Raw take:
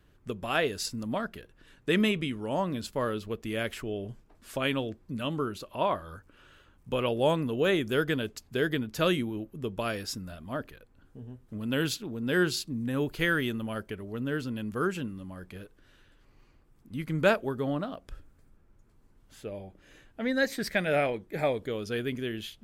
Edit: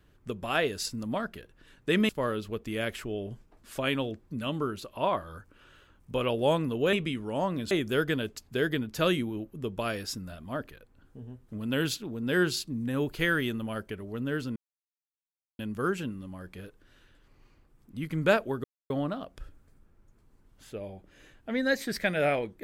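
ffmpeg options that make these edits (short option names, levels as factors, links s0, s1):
-filter_complex "[0:a]asplit=6[s0][s1][s2][s3][s4][s5];[s0]atrim=end=2.092[s6];[s1]atrim=start=2.868:end=7.712[s7];[s2]atrim=start=2.088:end=2.872[s8];[s3]atrim=start=7.708:end=14.56,asetpts=PTS-STARTPTS,afade=t=out:st=6.848:d=0.004:c=hsin,apad=pad_dur=1.03[s9];[s4]atrim=start=14.56:end=17.61,asetpts=PTS-STARTPTS,afade=t=in:d=0.004:c=hsin,afade=t=out:st=3.046:d=0.004:c=hsin,apad=pad_dur=0.26[s10];[s5]atrim=start=17.61,asetpts=PTS-STARTPTS,afade=t=in:d=0.004:c=hsin[s11];[s6][s7]acrossfade=d=0.004:c1=hsin:c2=hsin[s12];[s12][s8]acrossfade=d=0.004:c1=hsin:c2=hsin[s13];[s9][s10][s11]concat=n=3:v=0:a=1[s14];[s13][s14]acrossfade=d=0.004:c1=hsin:c2=hsin"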